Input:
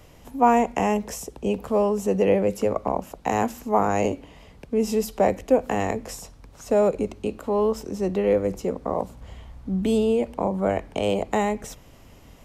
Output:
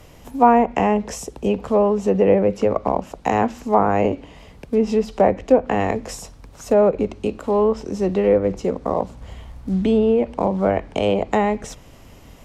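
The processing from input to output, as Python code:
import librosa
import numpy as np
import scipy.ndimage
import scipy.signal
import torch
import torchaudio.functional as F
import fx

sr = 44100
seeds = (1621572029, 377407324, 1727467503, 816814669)

y = fx.quant_float(x, sr, bits=4)
y = fx.env_lowpass_down(y, sr, base_hz=2000.0, full_db=-16.5)
y = y * librosa.db_to_amplitude(4.5)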